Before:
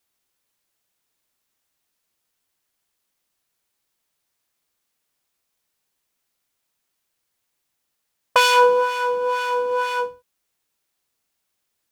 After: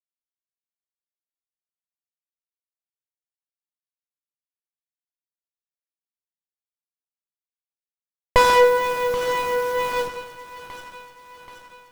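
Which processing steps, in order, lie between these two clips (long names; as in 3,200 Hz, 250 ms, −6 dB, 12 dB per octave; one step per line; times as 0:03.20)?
hold until the input has moved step −29.5 dBFS
echo with a time of its own for lows and highs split 930 Hz, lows 138 ms, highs 780 ms, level −9.5 dB
windowed peak hold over 17 samples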